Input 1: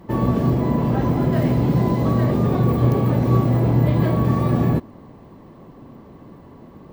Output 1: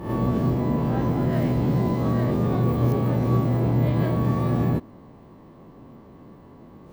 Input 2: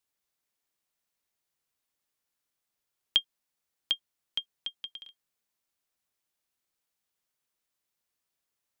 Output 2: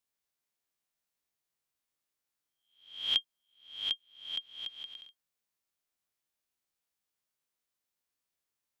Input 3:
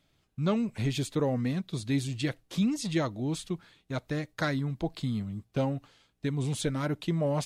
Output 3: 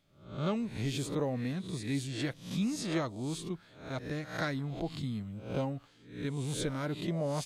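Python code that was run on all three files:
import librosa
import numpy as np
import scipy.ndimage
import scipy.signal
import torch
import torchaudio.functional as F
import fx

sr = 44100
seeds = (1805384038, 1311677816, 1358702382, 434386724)

y = fx.spec_swells(x, sr, rise_s=0.52)
y = y * librosa.db_to_amplitude(-5.5)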